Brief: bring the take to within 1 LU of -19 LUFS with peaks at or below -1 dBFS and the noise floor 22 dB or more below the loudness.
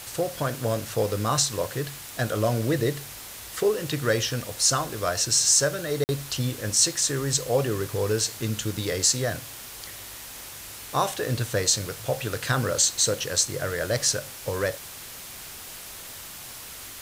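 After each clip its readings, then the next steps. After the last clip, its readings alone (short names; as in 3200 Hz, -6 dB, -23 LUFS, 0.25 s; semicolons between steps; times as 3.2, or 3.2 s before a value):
dropouts 1; longest dropout 49 ms; noise floor -41 dBFS; noise floor target -47 dBFS; loudness -24.5 LUFS; peak -7.5 dBFS; loudness target -19.0 LUFS
-> interpolate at 6.04, 49 ms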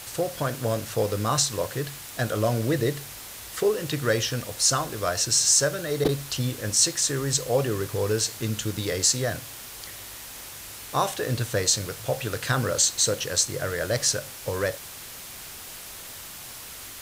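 dropouts 0; noise floor -41 dBFS; noise floor target -47 dBFS
-> denoiser 6 dB, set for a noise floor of -41 dBFS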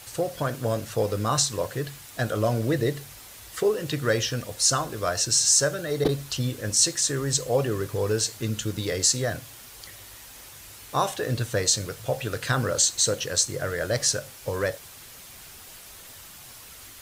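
noise floor -46 dBFS; noise floor target -47 dBFS
-> denoiser 6 dB, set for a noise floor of -46 dBFS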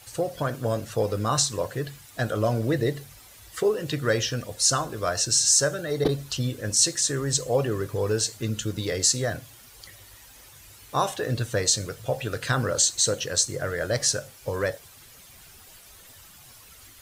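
noise floor -50 dBFS; loudness -25.0 LUFS; peak -7.5 dBFS; loudness target -19.0 LUFS
-> gain +6 dB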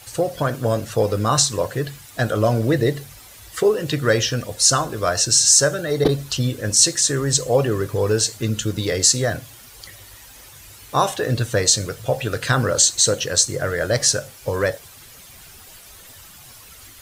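loudness -19.0 LUFS; peak -1.5 dBFS; noise floor -44 dBFS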